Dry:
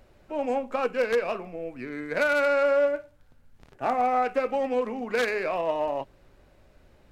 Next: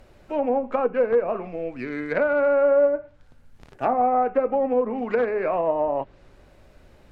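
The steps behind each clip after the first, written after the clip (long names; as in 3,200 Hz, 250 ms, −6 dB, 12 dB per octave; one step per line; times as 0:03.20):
treble cut that deepens with the level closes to 950 Hz, closed at −23 dBFS
level +5 dB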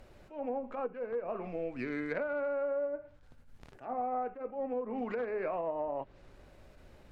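downward compressor 6 to 1, threshold −28 dBFS, peak gain reduction 12.5 dB
level that may rise only so fast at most 170 dB per second
level −4 dB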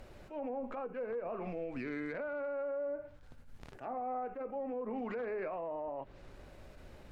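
brickwall limiter −35 dBFS, peak gain reduction 11.5 dB
level +3 dB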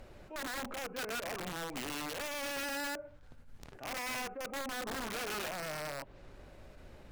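wrap-around overflow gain 34 dB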